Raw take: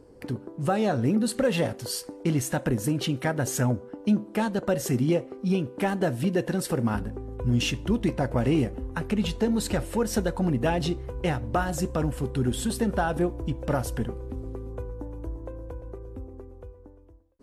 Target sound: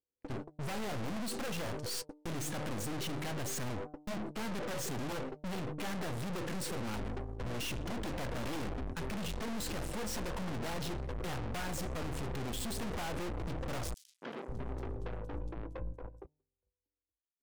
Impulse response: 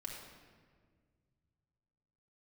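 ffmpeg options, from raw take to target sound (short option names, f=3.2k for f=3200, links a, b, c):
-filter_complex "[0:a]lowpass=8.5k,agate=range=-55dB:threshold=-34dB:ratio=16:detection=peak,bandreject=f=150.2:t=h:w=4,bandreject=f=300.4:t=h:w=4,bandreject=f=450.6:t=h:w=4,bandreject=f=600.8:t=h:w=4,bandreject=f=751:t=h:w=4,bandreject=f=901.2:t=h:w=4,aeval=exprs='0.0794*(abs(mod(val(0)/0.0794+3,4)-2)-1)':c=same,aeval=exprs='(tanh(316*val(0)+0.75)-tanh(0.75))/316':c=same,asettb=1/sr,asplit=3[a][b][c];[a]atrim=end=13.944[d];[b]atrim=start=13.94:end=16.26,asetpts=PTS-STARTPTS,afade=t=in:d=0.004:c=qsin,afade=t=out:st=2.316:d=0.004:c=qsin,acrossover=split=210|4500[e][f][g];[f]adelay=280[h];[e]adelay=540[i];[i][h][g]amix=inputs=3:normalize=0,atrim=end_sample=102312[j];[c]atrim=start=16.256[k];[d][j]acrossfade=d=0.004:c1=hsin:c2=qsin[l];[l][k]acrossfade=d=0.004:c1=qsin:c2=hsin,volume=12dB"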